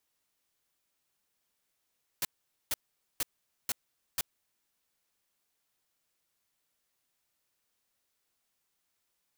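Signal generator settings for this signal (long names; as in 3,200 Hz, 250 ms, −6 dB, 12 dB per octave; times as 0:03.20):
noise bursts white, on 0.03 s, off 0.46 s, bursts 5, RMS −30.5 dBFS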